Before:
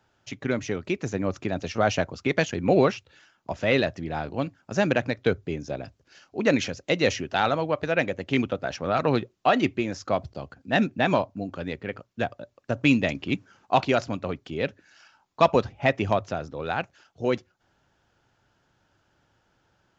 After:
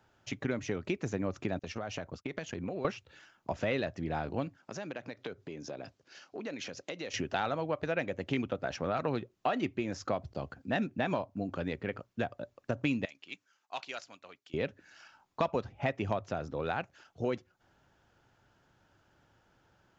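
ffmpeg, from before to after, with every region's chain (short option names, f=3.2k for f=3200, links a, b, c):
-filter_complex "[0:a]asettb=1/sr,asplit=3[a][b][c];[a]atrim=end=1.594[d];[b]atrim=start=1.59:end=2.85,asetpts=PTS-STARTPTS,afade=t=in:d=0.004:c=qsin,afade=t=out:st=1.256:d=0.004:c=qsin,agate=range=-33dB:threshold=-34dB:ratio=3:release=100:detection=peak,acompressor=threshold=-33dB:ratio=10:attack=3.2:release=140:knee=1:detection=peak[e];[c]atrim=start=2.846[f];[d][e]acrossfade=d=0.004:c1=hsin:c2=qsin[g];[g][f]acrossfade=d=0.004:c1=qsin:c2=hsin,asettb=1/sr,asplit=3[h][i][j];[h]atrim=end=4.574[k];[i]atrim=start=4.57:end=7.14,asetpts=PTS-STARTPTS,afade=t=in:d=0.004:c=qsin,afade=t=out:st=2.566:d=0.004:c=qsin,acompressor=threshold=-36dB:ratio=6:attack=3.2:release=140:knee=1:detection=peak,highpass=120,lowpass=5.1k,bass=f=250:g=-5,treble=f=4k:g=8[l];[j]atrim=start=7.136[m];[k][l]acrossfade=d=0.004:c1=hsin:c2=qsin[n];[n][m]acrossfade=d=0.004:c1=qsin:c2=hsin,asettb=1/sr,asplit=3[o][p][q];[o]atrim=end=13.054[r];[p]atrim=start=13.05:end=14.54,asetpts=PTS-STARTPTS,afade=t=in:d=0.004:c=qsin,afade=t=out:st=1.486:d=0.004:c=qsin,lowpass=f=4k:p=1,aderivative[s];[q]atrim=start=14.536[t];[r][s]acrossfade=d=0.004:c1=hsin:c2=qsin[u];[u][t]acrossfade=d=0.004:c1=qsin:c2=hsin,equalizer=f=4.9k:t=o:w=1.8:g=-3,acompressor=threshold=-31dB:ratio=3"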